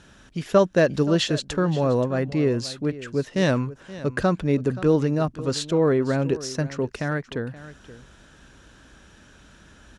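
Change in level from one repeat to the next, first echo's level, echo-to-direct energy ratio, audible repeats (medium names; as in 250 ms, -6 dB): no regular repeats, -16.5 dB, -16.5 dB, 1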